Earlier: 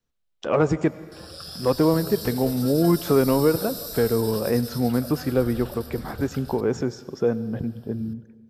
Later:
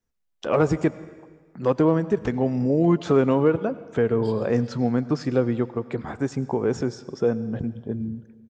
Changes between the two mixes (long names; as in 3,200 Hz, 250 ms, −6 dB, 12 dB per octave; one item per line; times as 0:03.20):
second voice: entry +2.10 s
background: muted